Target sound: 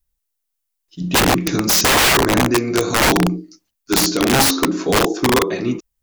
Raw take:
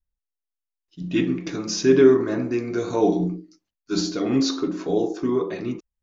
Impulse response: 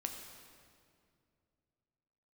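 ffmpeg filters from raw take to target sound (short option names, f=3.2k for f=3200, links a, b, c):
-filter_complex "[0:a]asettb=1/sr,asplit=3[a][b][c];[a]atrim=end=1.154[d];[b]atrim=start=1.15:end=2.51,asetpts=PTS-STARTPTS,afade=t=in:d=0.004:c=qsin,afade=t=out:st=1.356:d=0.004:c=qsin,bass=f=250:g=6,treble=f=4k:g=2[e];[c]atrim=start=2.506[f];[d][e]acrossfade=d=0.004:c1=hsin:c2=qsin[g];[g][f]acrossfade=d=0.004:c1=qsin:c2=hsin,crystalizer=i=1.5:c=0,aeval=exprs='(mod(6.31*val(0)+1,2)-1)/6.31':c=same,volume=7.5dB"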